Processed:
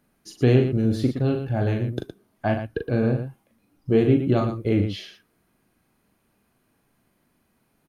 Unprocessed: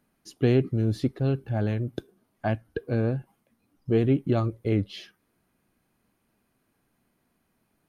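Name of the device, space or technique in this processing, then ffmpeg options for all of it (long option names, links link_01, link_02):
slapback doubling: -filter_complex "[0:a]asplit=3[link_01][link_02][link_03];[link_02]adelay=40,volume=-5.5dB[link_04];[link_03]adelay=116,volume=-9dB[link_05];[link_01][link_04][link_05]amix=inputs=3:normalize=0,volume=3dB"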